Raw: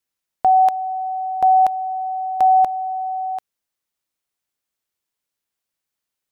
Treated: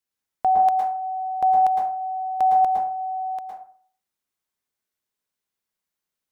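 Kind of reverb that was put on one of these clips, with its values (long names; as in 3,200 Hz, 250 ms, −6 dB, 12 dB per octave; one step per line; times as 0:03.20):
dense smooth reverb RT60 0.51 s, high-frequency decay 0.5×, pre-delay 100 ms, DRR −0.5 dB
level −5 dB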